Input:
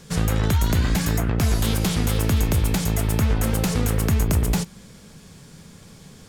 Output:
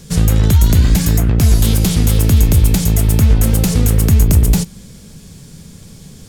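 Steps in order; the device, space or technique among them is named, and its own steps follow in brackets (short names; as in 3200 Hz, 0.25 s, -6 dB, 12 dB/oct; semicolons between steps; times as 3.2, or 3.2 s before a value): smiley-face EQ (low shelf 130 Hz +5.5 dB; bell 1200 Hz -7 dB 2.3 oct; high shelf 7100 Hz +4 dB); gain +6.5 dB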